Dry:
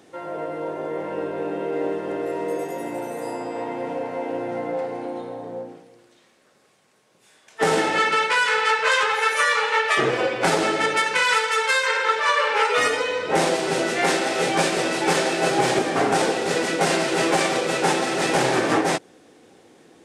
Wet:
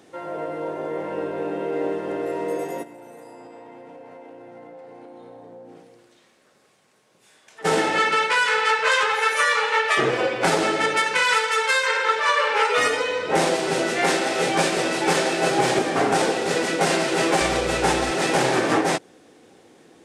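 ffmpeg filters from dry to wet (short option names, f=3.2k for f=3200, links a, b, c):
-filter_complex "[0:a]asplit=3[a][b][c];[a]afade=t=out:st=2.82:d=0.02[d];[b]acompressor=threshold=-39dB:ratio=10:attack=3.2:release=140:knee=1:detection=peak,afade=t=in:st=2.82:d=0.02,afade=t=out:st=7.64:d=0.02[e];[c]afade=t=in:st=7.64:d=0.02[f];[d][e][f]amix=inputs=3:normalize=0,asettb=1/sr,asplit=3[g][h][i];[g]atrim=end=17.414[j];[h]atrim=start=17.41:end=18.11,asetpts=PTS-STARTPTS,afade=t=in:d=0.004:c=qsin,afade=t=out:st=0.696:d=0.004:c=qsin,aeval=exprs='val(0)+0.0224*(sin(2*PI*60*n/s)+sin(2*PI*2*60*n/s)/2+sin(2*PI*3*60*n/s)/3+sin(2*PI*4*60*n/s)/4+sin(2*PI*5*60*n/s)/5)':c=same[k];[i]atrim=start=18.106[l];[j][k]acrossfade=d=0.004:c1=hsin:c2=qsin[m];[m][l]acrossfade=d=0.004:c1=qsin:c2=hsin"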